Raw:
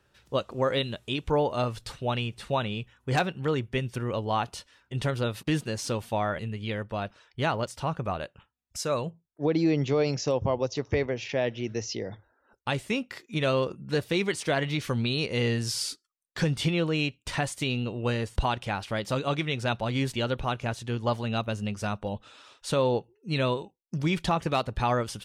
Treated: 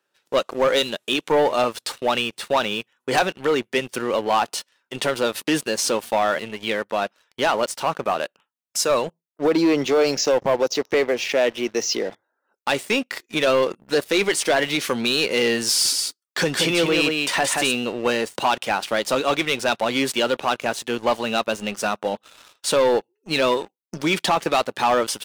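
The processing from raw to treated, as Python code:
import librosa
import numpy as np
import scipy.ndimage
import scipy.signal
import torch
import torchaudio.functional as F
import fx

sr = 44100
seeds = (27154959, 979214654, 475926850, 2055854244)

y = fx.echo_single(x, sr, ms=176, db=-5.0, at=(15.67, 17.73))
y = scipy.signal.sosfilt(scipy.signal.bessel(4, 330.0, 'highpass', norm='mag', fs=sr, output='sos'), y)
y = fx.high_shelf(y, sr, hz=9700.0, db=6.0)
y = fx.leveller(y, sr, passes=3)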